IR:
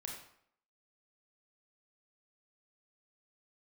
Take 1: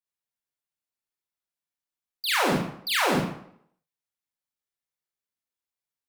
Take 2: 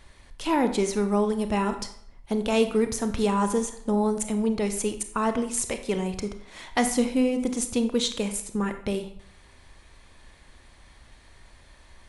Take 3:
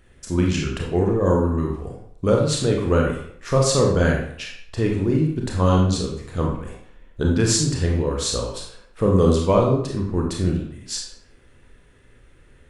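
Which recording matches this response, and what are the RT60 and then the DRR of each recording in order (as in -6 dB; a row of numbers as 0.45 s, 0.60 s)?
3; 0.65 s, 0.65 s, 0.65 s; -5.5 dB, 7.5 dB, -1.0 dB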